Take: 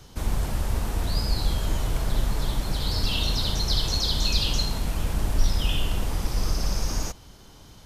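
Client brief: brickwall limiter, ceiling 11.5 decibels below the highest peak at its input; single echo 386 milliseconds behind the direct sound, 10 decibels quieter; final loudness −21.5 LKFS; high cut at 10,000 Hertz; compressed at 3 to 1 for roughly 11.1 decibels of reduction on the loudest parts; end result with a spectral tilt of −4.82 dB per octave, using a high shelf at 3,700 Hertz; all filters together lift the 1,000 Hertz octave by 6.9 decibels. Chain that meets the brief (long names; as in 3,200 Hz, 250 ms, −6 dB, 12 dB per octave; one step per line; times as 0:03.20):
low-pass filter 10,000 Hz
parametric band 1,000 Hz +9 dB
high-shelf EQ 3,700 Hz −7.5 dB
downward compressor 3 to 1, threshold −29 dBFS
brickwall limiter −30.5 dBFS
single-tap delay 386 ms −10 dB
level +19.5 dB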